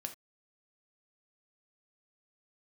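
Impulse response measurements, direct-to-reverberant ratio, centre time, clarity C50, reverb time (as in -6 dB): 5.0 dB, 8 ms, 12.0 dB, not exponential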